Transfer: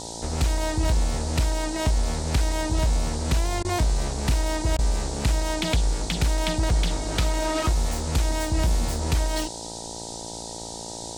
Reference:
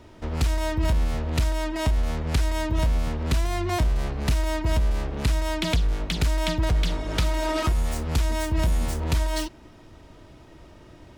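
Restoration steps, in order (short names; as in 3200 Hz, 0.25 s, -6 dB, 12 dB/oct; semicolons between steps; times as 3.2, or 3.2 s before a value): de-hum 56.7 Hz, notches 17; interpolate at 3.63/4.77, 16 ms; noise print and reduce 12 dB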